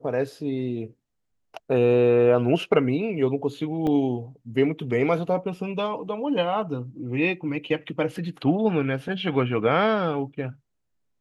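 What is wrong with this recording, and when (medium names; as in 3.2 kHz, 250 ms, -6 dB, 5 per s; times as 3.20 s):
3.87 s: dropout 2.2 ms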